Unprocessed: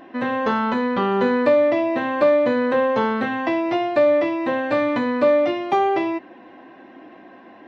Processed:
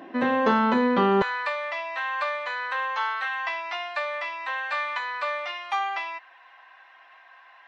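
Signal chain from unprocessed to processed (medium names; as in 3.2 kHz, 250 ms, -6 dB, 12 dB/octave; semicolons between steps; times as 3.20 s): high-pass 140 Hz 24 dB/octave, from 1.22 s 1 kHz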